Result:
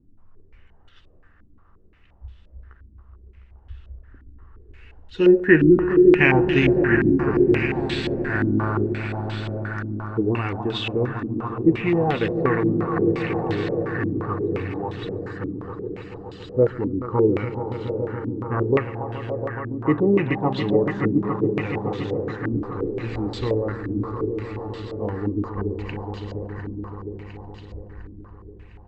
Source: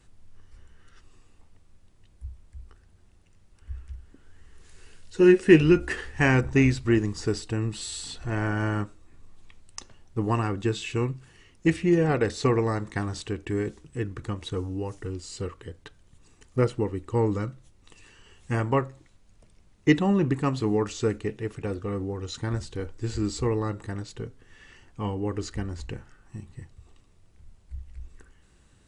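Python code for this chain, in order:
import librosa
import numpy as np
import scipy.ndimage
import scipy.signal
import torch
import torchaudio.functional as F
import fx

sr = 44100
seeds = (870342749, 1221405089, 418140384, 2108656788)

y = fx.echo_swell(x, sr, ms=141, loudest=5, wet_db=-11)
y = fx.filter_held_lowpass(y, sr, hz=5.7, low_hz=280.0, high_hz=3400.0)
y = y * 10.0 ** (-1.0 / 20.0)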